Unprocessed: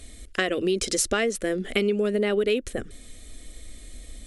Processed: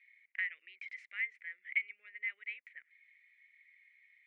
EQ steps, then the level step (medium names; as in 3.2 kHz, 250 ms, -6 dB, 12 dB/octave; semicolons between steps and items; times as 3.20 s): Butterworth band-pass 2.1 kHz, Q 5.3; -1.0 dB